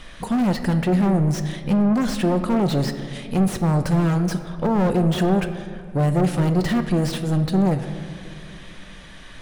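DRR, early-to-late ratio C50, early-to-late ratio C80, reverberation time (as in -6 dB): 8.0 dB, 10.0 dB, 11.0 dB, 2.2 s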